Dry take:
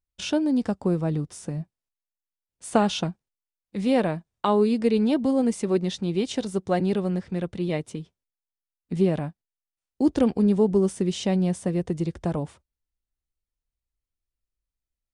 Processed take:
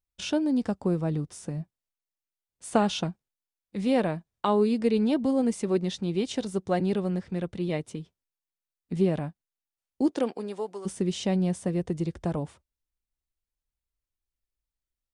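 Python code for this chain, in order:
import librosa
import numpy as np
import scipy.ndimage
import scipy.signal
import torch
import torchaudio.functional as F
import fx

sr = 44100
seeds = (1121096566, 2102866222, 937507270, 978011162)

y = fx.highpass(x, sr, hz=fx.line((10.06, 270.0), (10.85, 1000.0)), slope=12, at=(10.06, 10.85), fade=0.02)
y = y * librosa.db_to_amplitude(-2.5)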